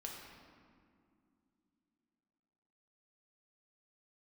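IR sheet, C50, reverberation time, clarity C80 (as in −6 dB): 1.5 dB, 2.4 s, 3.0 dB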